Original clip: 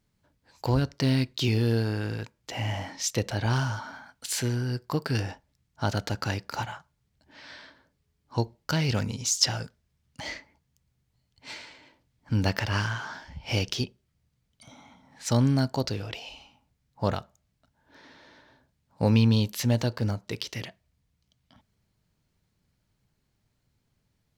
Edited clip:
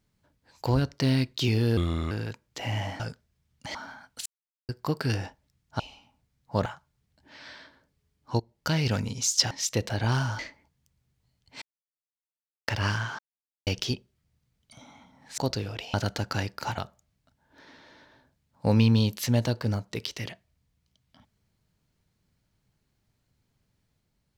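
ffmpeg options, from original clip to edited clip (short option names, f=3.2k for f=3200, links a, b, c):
-filter_complex "[0:a]asplit=19[a][b][c][d][e][f][g][h][i][j][k][l][m][n][o][p][q][r][s];[a]atrim=end=1.774[t];[b]atrim=start=1.77:end=2.03,asetpts=PTS-STARTPTS,asetrate=33957,aresample=44100[u];[c]atrim=start=2.026:end=2.922[v];[d]atrim=start=9.538:end=10.292[w];[e]atrim=start=3.798:end=4.31,asetpts=PTS-STARTPTS,afade=t=out:st=0.508:d=0.004:c=hsin[x];[f]atrim=start=4.31:end=4.74,asetpts=PTS-STARTPTS,volume=0[y];[g]atrim=start=4.74:end=5.852,asetpts=PTS-STARTPTS,afade=t=in:d=0.004:c=hsin[z];[h]atrim=start=16.278:end=17.142[aa];[i]atrim=start=6.688:end=8.43,asetpts=PTS-STARTPTS,afade=t=out:st=1.738:d=0.004:c=hsin:silence=0.16788[ab];[j]atrim=start=8.43:end=9.542,asetpts=PTS-STARTPTS,afade=t=in:d=0.29:silence=0.16788[ac];[k]atrim=start=2.918:end=3.802[ad];[l]atrim=start=10.288:end=11.52,asetpts=PTS-STARTPTS,afade=t=out:st=1.228:d=0.004:c=hsin[ae];[m]atrim=start=11.52:end=12.58,asetpts=PTS-STARTPTS,volume=0[af];[n]atrim=start=12.58:end=13.09,asetpts=PTS-STARTPTS,afade=t=in:d=0.004:c=hsin,afade=t=out:st=0.506:d=0.004:c=hsin[ag];[o]atrim=start=13.09:end=13.57,asetpts=PTS-STARTPTS,volume=0[ah];[p]atrim=start=13.57:end=15.282,asetpts=PTS-STARTPTS,afade=t=in:d=0.004:c=hsin[ai];[q]atrim=start=15.718:end=16.282[aj];[r]atrim=start=5.848:end=6.692[ak];[s]atrim=start=17.138[al];[t][u]acrossfade=d=0.004:c1=hsin:c2=hsin[am];[am][v]acrossfade=d=0.004:c1=hsin:c2=hsin[an];[an][w]acrossfade=d=0.004:c1=hsin:c2=hsin[ao];[x][y][z]concat=n=3:v=0:a=1[ap];[ao][ap]acrossfade=d=0.004:c1=hsin:c2=hsin[aq];[aq][aa]acrossfade=d=0.004:c1=hsin:c2=hsin[ar];[ab][ac]concat=n=2:v=0:a=1[as];[ar][as]acrossfade=d=0.004:c1=hsin:c2=hsin[at];[at][ad]acrossfade=d=0.004:c1=hsin:c2=hsin[au];[ae][af][ag][ah][ai]concat=n=5:v=0:a=1[av];[au][av]acrossfade=d=0.004:c1=hsin:c2=hsin[aw];[aw][aj]acrossfade=d=0.004:c1=hsin:c2=hsin[ax];[ax][ak]acrossfade=d=0.004:c1=hsin:c2=hsin[ay];[ay][al]acrossfade=d=0.004:c1=hsin:c2=hsin"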